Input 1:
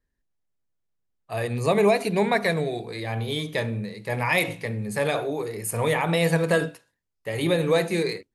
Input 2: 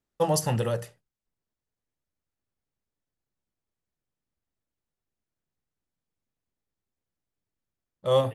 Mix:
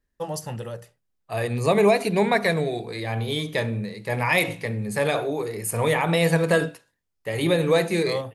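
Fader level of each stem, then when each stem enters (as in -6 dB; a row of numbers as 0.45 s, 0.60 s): +1.5 dB, -6.5 dB; 0.00 s, 0.00 s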